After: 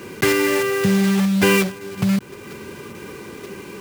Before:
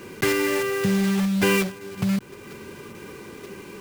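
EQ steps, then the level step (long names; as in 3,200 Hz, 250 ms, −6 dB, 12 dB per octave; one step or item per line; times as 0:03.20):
high-pass filter 45 Hz
+4.5 dB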